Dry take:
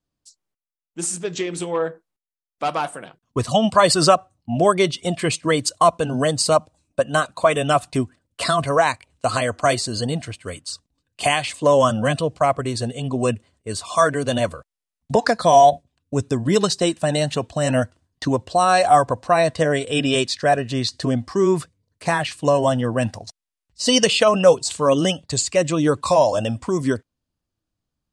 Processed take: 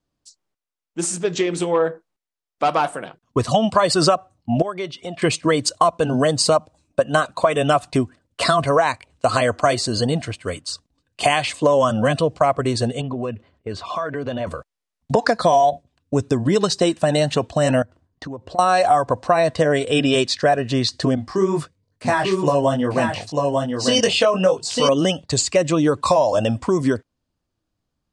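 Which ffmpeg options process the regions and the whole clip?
-filter_complex "[0:a]asettb=1/sr,asplit=3[s0][s1][s2];[s0]atrim=end=4.624[s3];[s1]atrim=start=4.62:end=5.22,asetpts=PTS-STARTPTS,afade=t=in:d=0.004:c=qsin,afade=t=out:st=0.596:d=0.004:c=qsin,highpass=f=740:p=1,aemphasis=mode=reproduction:type=bsi,acompressor=threshold=0.0141:ratio=2:attack=3.2:release=140:knee=1:detection=peak[s4];[s2]atrim=start=5.216[s5];[s3][s4]acrossfade=d=0.004:c1=hsin:c2=qsin[s6];[s6][s5]acrossfade=d=0.004:c1=qsin:c2=hsin,asettb=1/sr,asplit=3[s7][s8][s9];[s7]atrim=end=13.014[s10];[s8]atrim=start=13.01:end=14.47,asetpts=PTS-STARTPTS,afade=t=in:d=0.004:c=qsin,afade=t=out:st=1.456:d=0.004:c=qsin,lowpass=3200,acompressor=threshold=0.0398:ratio=5:attack=3.2:release=140:knee=1:detection=peak[s11];[s9]atrim=start=14.466[s12];[s10][s11]acrossfade=d=0.004:c1=hsin:c2=qsin[s13];[s13][s12]acrossfade=d=0.004:c1=qsin:c2=hsin,asettb=1/sr,asplit=3[s14][s15][s16];[s14]atrim=end=17.824[s17];[s15]atrim=start=17.82:end=18.59,asetpts=PTS-STARTPTS,afade=t=in:d=0.004:c=qsin,afade=t=out:st=0.766:d=0.004:c=qsin,highshelf=f=2200:g=-11,acompressor=threshold=0.0178:ratio=5:attack=3.2:release=140:knee=1:detection=peak[s18];[s16]atrim=start=18.586[s19];[s17][s18]acrossfade=d=0.004:c1=hsin:c2=qsin[s20];[s20][s19]acrossfade=d=0.004:c1=qsin:c2=hsin,asettb=1/sr,asplit=3[s21][s22][s23];[s21]atrim=end=21.154[s24];[s22]atrim=start=21.15:end=24.89,asetpts=PTS-STARTPTS,afade=t=in:d=0.004:c=qsin,afade=t=out:st=3.736:d=0.004:c=qsin,flanger=delay=19.5:depth=2.5:speed=2.3,aecho=1:1:895:0.596,atrim=end_sample=164934[s25];[s23]atrim=start=24.886[s26];[s24][s25]acrossfade=d=0.004:c1=hsin:c2=qsin[s27];[s27][s26]acrossfade=d=0.004:c1=qsin:c2=hsin,aemphasis=mode=reproduction:type=75fm,acompressor=threshold=0.126:ratio=6,bass=f=250:g=-3,treble=f=4000:g=7,volume=1.88"

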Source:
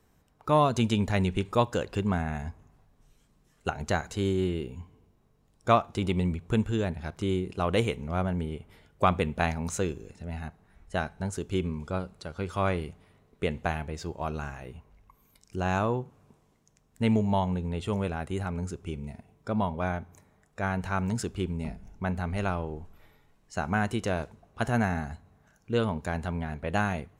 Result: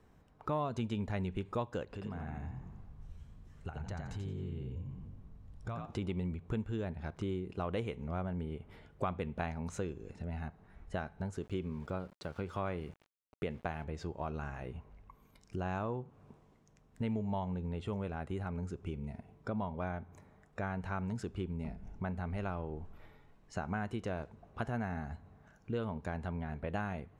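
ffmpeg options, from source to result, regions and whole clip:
-filter_complex "[0:a]asettb=1/sr,asplit=3[s0][s1][s2];[s0]atrim=end=1.844[s3];[s1]atrim=start=1.84:end=5.86,asetpts=PTS-STARTPTS,afade=t=in:d=0.004:c=qsin,afade=t=out:st=4.016:d=0.004:c=qsin,asubboost=boost=6.5:cutoff=130,acompressor=threshold=0.00794:ratio=2.5:attack=3.2:release=140:knee=1:detection=peak,asplit=5[s4][s5][s6][s7][s8];[s5]adelay=87,afreqshift=48,volume=0.596[s9];[s6]adelay=174,afreqshift=96,volume=0.191[s10];[s7]adelay=261,afreqshift=144,volume=0.061[s11];[s8]adelay=348,afreqshift=192,volume=0.0195[s12];[s4][s9][s10][s11][s12]amix=inputs=5:normalize=0,atrim=end_sample=177282[s13];[s2]atrim=start=5.856[s14];[s3][s13]acrossfade=d=0.004:c1=hsin:c2=qsin[s15];[s15][s14]acrossfade=d=0.004:c1=qsin:c2=hsin,asettb=1/sr,asplit=3[s16][s17][s18];[s16]atrim=end=11.424[s19];[s17]atrim=start=11.42:end=13.84,asetpts=PTS-STARTPTS,afade=t=in:d=0.004:c=qsin,afade=t=out:st=2.416:d=0.004:c=qsin,highpass=f=73:p=1,aeval=exprs='val(0)*gte(abs(val(0)),0.00299)':c=same[s20];[s18]atrim=start=13.836[s21];[s19][s20]acrossfade=d=0.004:c1=hsin:c2=qsin[s22];[s22][s21]acrossfade=d=0.004:c1=qsin:c2=hsin,lowpass=f=2200:p=1,acompressor=threshold=0.00891:ratio=2.5,volume=1.26"

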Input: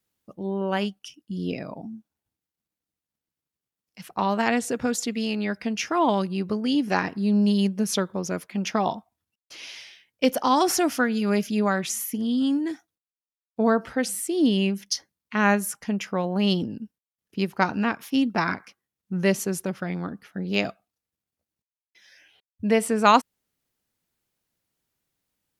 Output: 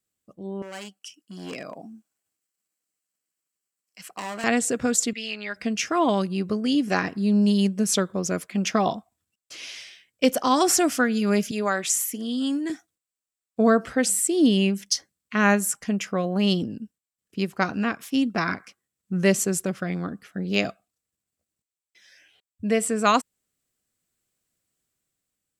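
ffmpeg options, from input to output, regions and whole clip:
-filter_complex "[0:a]asettb=1/sr,asplit=3[s0][s1][s2];[s0]atrim=end=0.624[s3];[s1]atrim=start=0.62:end=4.44,asetpts=PTS-STARTPTS,afade=t=in:d=0.004:c=qsin,afade=t=out:st=3.816:d=0.004:c=qsin,volume=21.1,asoftclip=hard,volume=0.0473,highpass=f=660:p=1,bandreject=f=3600:w=8.8[s4];[s2]atrim=start=4.436[s5];[s3][s4]acrossfade=d=0.004:c1=hsin:c2=qsin[s6];[s6][s5]acrossfade=d=0.004:c1=qsin:c2=hsin,asettb=1/sr,asplit=3[s7][s8][s9];[s7]atrim=end=5.134[s10];[s8]atrim=start=5.13:end=5.56,asetpts=PTS-STARTPTS,afade=t=in:d=0.004:c=qsin,afade=t=out:st=0.426:d=0.004:c=qsin,deesser=0.85,bandpass=f=2400:t=q:w=0.9,aecho=1:1:4.9:0.88,atrim=end_sample=18963[s11];[s9]atrim=start=5.556[s12];[s10][s11]acrossfade=d=0.004:c1=hsin:c2=qsin[s13];[s13][s12]acrossfade=d=0.004:c1=qsin:c2=hsin,asettb=1/sr,asplit=3[s14][s15][s16];[s14]atrim=end=11.514[s17];[s15]atrim=start=11.51:end=12.7,asetpts=PTS-STARTPTS,afade=t=in:d=0.004:c=qsin,afade=t=out:st=1.186:d=0.004:c=qsin,highpass=240,lowshelf=f=330:g=-5[s18];[s16]atrim=start=12.696[s19];[s17][s18]acrossfade=d=0.004:c1=hsin:c2=qsin[s20];[s20][s19]acrossfade=d=0.004:c1=qsin:c2=hsin,equalizer=f=7800:t=o:w=0.3:g=11.5,bandreject=f=890:w=5.7,dynaudnorm=f=260:g=9:m=3.16,volume=0.531"

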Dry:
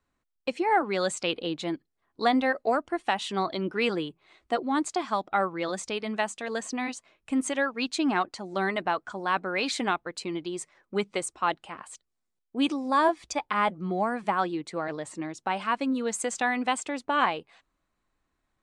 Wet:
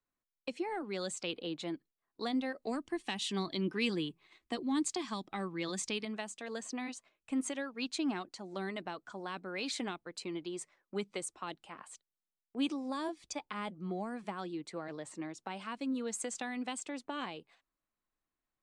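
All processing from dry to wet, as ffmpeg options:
-filter_complex "[0:a]asettb=1/sr,asplit=3[s0][s1][s2];[s0]atrim=end=2.624[s3];[s1]atrim=start=2.62:end=6.05,asetpts=PTS-STARTPTS,afade=t=in:d=0.004:c=qsin,afade=t=out:st=3.426:d=0.004:c=qsin,equalizer=f=610:w=1.3:g=-9,bandreject=f=1400:w=6.7,acontrast=61[s4];[s2]atrim=start=6.046[s5];[s3][s4]acrossfade=d=0.004:c1=hsin:c2=qsin[s6];[s6][s5]acrossfade=d=0.004:c1=qsin:c2=hsin,agate=range=0.447:threshold=0.00282:ratio=16:detection=peak,equalizer=f=66:t=o:w=1.4:g=-7,acrossover=split=390|3000[s7][s8][s9];[s8]acompressor=threshold=0.0158:ratio=4[s10];[s7][s10][s9]amix=inputs=3:normalize=0,volume=0.473"

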